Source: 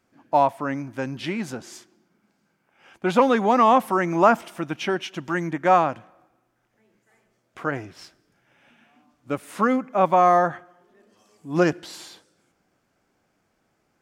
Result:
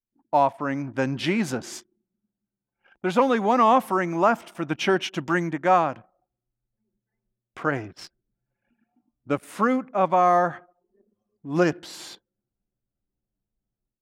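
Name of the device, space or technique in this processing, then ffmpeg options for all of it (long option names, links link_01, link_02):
voice memo with heavy noise removal: -af "anlmdn=0.0251,dynaudnorm=framelen=190:gausssize=3:maxgain=12dB,volume=-7dB"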